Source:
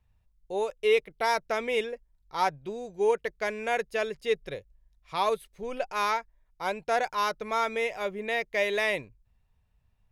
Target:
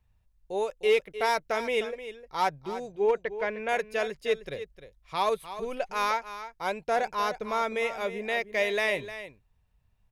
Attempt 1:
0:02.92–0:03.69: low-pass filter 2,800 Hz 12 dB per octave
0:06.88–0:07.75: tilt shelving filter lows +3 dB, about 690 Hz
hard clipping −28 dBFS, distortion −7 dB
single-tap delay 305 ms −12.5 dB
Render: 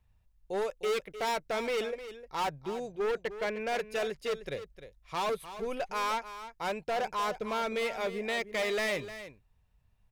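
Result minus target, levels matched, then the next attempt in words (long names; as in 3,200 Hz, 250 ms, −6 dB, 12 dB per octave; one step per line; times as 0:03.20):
hard clipping: distortion +23 dB
0:02.92–0:03.69: low-pass filter 2,800 Hz 12 dB per octave
0:06.88–0:07.75: tilt shelving filter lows +3 dB, about 690 Hz
hard clipping −16.5 dBFS, distortion −30 dB
single-tap delay 305 ms −12.5 dB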